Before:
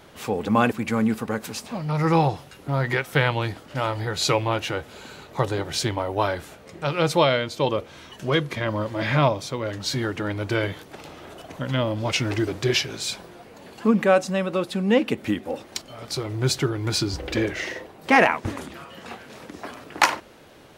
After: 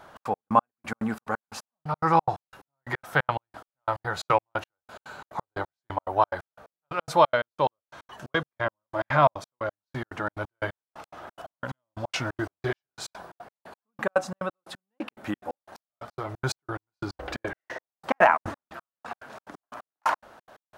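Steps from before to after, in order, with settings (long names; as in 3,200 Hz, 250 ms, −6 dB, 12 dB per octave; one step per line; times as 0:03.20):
flat-topped bell 1,000 Hz +11 dB
gate pattern "xx.x..x...x." 178 BPM −60 dB
level −7 dB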